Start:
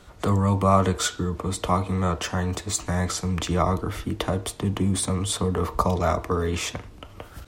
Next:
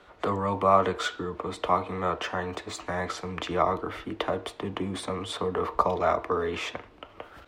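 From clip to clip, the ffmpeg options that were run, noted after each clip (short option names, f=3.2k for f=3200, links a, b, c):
-filter_complex "[0:a]acrossover=split=290 3700:gain=0.178 1 0.126[a][b][c];[a][b][c]amix=inputs=3:normalize=0"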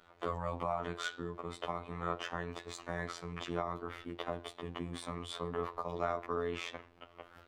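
-af "alimiter=limit=-15dB:level=0:latency=1:release=192,afftfilt=real='hypot(re,im)*cos(PI*b)':imag='0':win_size=2048:overlap=0.75,volume=-5.5dB"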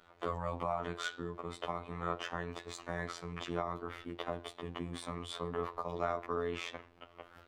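-af anull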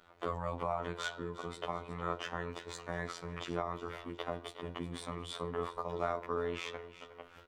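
-af "aecho=1:1:362|724|1086:0.2|0.0638|0.0204"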